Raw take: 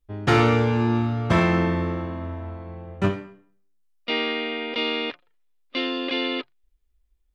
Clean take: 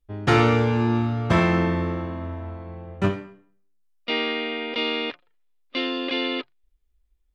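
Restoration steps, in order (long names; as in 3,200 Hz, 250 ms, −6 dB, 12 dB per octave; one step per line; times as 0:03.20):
clipped peaks rebuilt −9.5 dBFS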